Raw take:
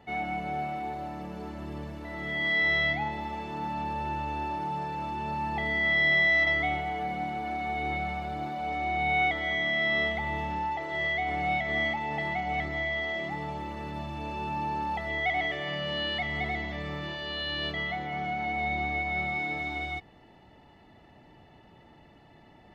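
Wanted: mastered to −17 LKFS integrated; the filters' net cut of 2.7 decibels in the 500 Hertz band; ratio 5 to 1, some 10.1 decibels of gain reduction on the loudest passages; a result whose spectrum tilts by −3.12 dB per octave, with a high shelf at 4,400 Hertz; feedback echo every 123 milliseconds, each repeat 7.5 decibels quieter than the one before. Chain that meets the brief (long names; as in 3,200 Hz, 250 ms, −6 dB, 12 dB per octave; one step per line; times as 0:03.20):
parametric band 500 Hz −4 dB
high-shelf EQ 4,400 Hz −4 dB
downward compressor 5 to 1, threshold −34 dBFS
repeating echo 123 ms, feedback 42%, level −7.5 dB
level +18.5 dB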